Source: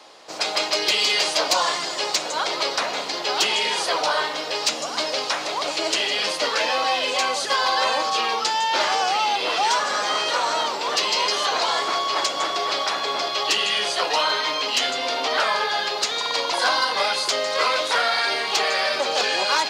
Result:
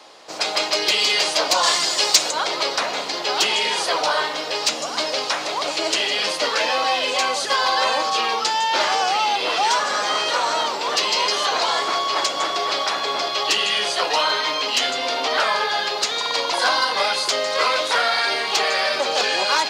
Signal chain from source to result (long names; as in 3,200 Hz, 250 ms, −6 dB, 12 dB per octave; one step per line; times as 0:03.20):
0:01.63–0:02.31: high-shelf EQ 3,300 Hz +10 dB
level +1.5 dB